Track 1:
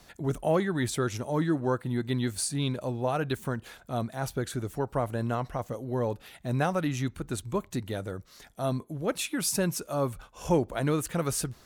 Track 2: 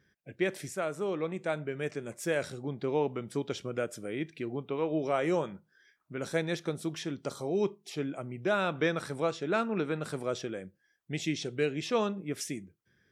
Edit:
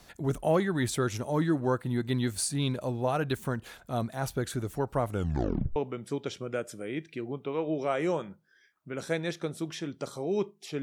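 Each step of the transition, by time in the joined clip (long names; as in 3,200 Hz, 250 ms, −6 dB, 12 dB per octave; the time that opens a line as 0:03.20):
track 1
0:05.08: tape stop 0.68 s
0:05.76: continue with track 2 from 0:03.00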